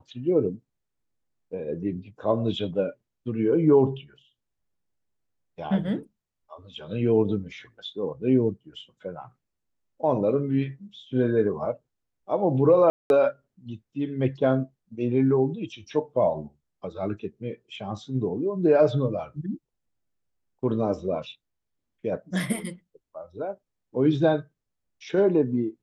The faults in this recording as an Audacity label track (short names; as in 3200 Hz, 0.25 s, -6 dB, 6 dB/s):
12.900000	13.100000	gap 0.201 s